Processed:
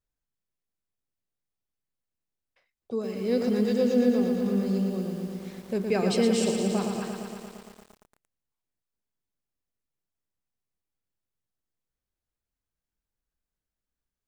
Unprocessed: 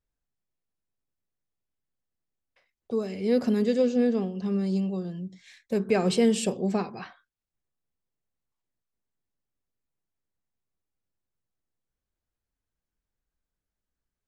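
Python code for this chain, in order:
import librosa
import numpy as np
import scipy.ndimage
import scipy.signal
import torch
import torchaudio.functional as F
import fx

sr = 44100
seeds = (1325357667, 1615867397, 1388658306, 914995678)

y = fx.dynamic_eq(x, sr, hz=5300.0, q=2.6, threshold_db=-51.0, ratio=4.0, max_db=4)
y = fx.echo_crushed(y, sr, ms=115, feedback_pct=80, bits=8, wet_db=-5.5)
y = y * librosa.db_to_amplitude(-2.5)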